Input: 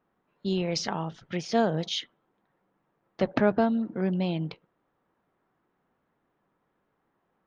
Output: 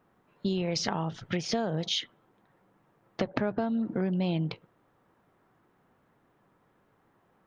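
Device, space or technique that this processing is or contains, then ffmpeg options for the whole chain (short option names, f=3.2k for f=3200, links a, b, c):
serial compression, peaks first: -af "equalizer=f=110:t=o:w=0.6:g=6,acompressor=threshold=-29dB:ratio=6,acompressor=threshold=-39dB:ratio=1.5,volume=7dB"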